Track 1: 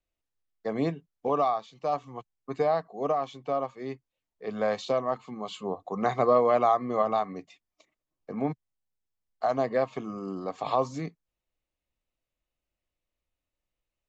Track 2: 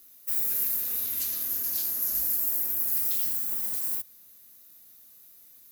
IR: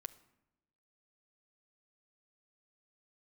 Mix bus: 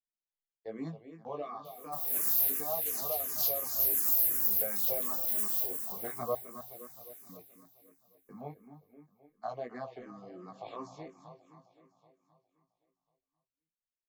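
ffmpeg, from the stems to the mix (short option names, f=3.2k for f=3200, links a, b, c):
-filter_complex "[0:a]agate=range=-11dB:threshold=-46dB:ratio=16:detection=peak,flanger=delay=16:depth=4.5:speed=0.3,volume=-7.5dB,asplit=3[a][b][c];[a]atrim=end=6.35,asetpts=PTS-STARTPTS,afade=t=out:st=6.346:d=0.004:c=hsin[d];[b]atrim=start=6.35:end=7.29,asetpts=PTS-STARTPTS,volume=0[e];[c]atrim=start=7.29,asetpts=PTS-STARTPTS,afade=t=in:d=0.004:c=hsin[f];[d][e][f]concat=n=3:v=0:a=1,asplit=3[g][h][i];[h]volume=-11.5dB[j];[1:a]adelay=1650,volume=2.5dB,asplit=2[k][l];[l]volume=-9.5dB[m];[i]apad=whole_len=324923[n];[k][n]sidechaincompress=threshold=-43dB:ratio=8:attack=10:release=281[o];[j][m]amix=inputs=2:normalize=0,aecho=0:1:261|522|783|1044|1305|1566|1827|2088|2349|2610:1|0.6|0.36|0.216|0.13|0.0778|0.0467|0.028|0.0168|0.0101[p];[g][o][p]amix=inputs=3:normalize=0,asplit=2[q][r];[r]afreqshift=-2.8[s];[q][s]amix=inputs=2:normalize=1"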